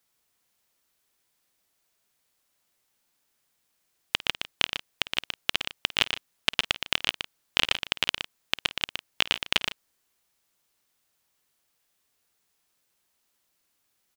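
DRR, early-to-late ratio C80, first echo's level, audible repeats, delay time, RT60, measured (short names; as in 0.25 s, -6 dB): none, none, -18.0 dB, 3, 52 ms, none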